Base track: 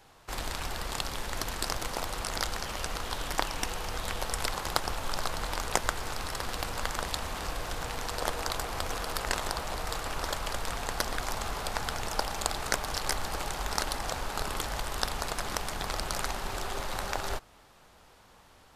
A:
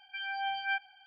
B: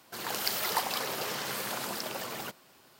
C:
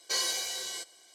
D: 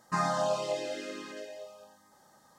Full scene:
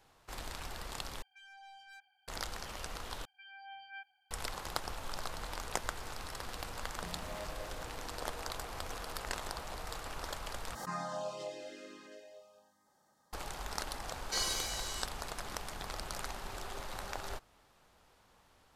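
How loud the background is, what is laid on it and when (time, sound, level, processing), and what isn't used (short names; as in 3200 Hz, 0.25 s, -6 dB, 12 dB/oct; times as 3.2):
base track -8.5 dB
1.22 replace with A -15 dB + soft clip -36.5 dBFS
3.25 replace with A -16 dB
6.9 add D -13.5 dB + median filter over 41 samples
10.75 replace with D -10.5 dB + backwards sustainer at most 71 dB/s
14.22 add C -5 dB
not used: B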